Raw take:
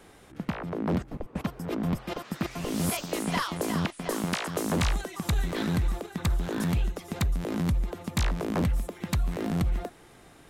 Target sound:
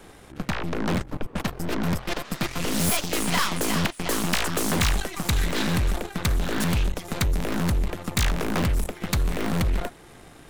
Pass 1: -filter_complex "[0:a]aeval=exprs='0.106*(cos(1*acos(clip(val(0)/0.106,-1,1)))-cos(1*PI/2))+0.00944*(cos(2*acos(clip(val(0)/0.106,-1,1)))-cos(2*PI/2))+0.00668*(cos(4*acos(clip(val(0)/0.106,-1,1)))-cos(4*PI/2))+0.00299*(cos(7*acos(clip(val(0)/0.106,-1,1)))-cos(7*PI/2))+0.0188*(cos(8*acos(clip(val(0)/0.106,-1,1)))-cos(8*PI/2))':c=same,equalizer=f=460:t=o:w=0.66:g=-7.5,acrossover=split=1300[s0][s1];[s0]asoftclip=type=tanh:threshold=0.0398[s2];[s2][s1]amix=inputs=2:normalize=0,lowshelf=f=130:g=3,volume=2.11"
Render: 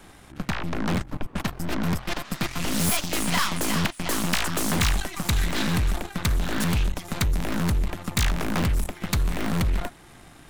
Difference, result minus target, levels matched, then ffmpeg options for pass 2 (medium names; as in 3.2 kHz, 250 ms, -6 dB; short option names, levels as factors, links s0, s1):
500 Hz band -3.0 dB
-filter_complex "[0:a]aeval=exprs='0.106*(cos(1*acos(clip(val(0)/0.106,-1,1)))-cos(1*PI/2))+0.00944*(cos(2*acos(clip(val(0)/0.106,-1,1)))-cos(2*PI/2))+0.00668*(cos(4*acos(clip(val(0)/0.106,-1,1)))-cos(4*PI/2))+0.00299*(cos(7*acos(clip(val(0)/0.106,-1,1)))-cos(7*PI/2))+0.0188*(cos(8*acos(clip(val(0)/0.106,-1,1)))-cos(8*PI/2))':c=same,acrossover=split=1300[s0][s1];[s0]asoftclip=type=tanh:threshold=0.0398[s2];[s2][s1]amix=inputs=2:normalize=0,lowshelf=f=130:g=3,volume=2.11"